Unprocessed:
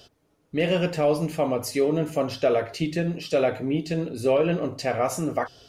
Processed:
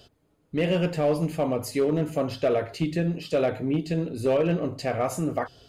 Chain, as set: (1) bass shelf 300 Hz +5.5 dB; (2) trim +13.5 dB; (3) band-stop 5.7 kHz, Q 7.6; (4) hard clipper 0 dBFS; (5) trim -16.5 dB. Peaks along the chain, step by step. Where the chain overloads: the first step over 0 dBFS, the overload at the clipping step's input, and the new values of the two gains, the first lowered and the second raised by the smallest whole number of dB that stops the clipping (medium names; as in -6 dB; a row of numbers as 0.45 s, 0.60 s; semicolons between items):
-10.0 dBFS, +3.5 dBFS, +3.5 dBFS, 0.0 dBFS, -16.5 dBFS; step 2, 3.5 dB; step 2 +9.5 dB, step 5 -12.5 dB